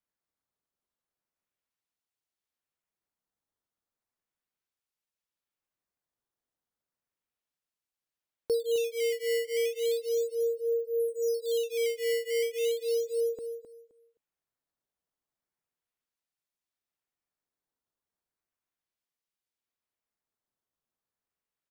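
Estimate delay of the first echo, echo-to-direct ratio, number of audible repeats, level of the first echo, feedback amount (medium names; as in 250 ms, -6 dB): 261 ms, -10.0 dB, 2, -10.0 dB, 20%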